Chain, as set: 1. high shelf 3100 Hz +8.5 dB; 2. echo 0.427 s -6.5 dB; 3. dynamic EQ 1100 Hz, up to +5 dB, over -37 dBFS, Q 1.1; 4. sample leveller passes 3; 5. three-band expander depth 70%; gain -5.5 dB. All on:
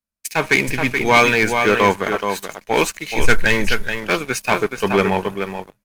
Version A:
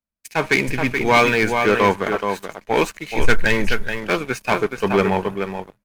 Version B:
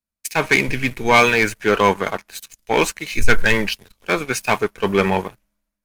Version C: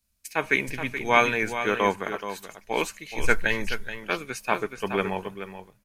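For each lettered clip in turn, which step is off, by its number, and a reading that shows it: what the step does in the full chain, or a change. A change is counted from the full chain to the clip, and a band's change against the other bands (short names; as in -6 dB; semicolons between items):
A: 1, 8 kHz band -6.0 dB; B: 2, momentary loudness spread change +1 LU; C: 4, crest factor change +8.0 dB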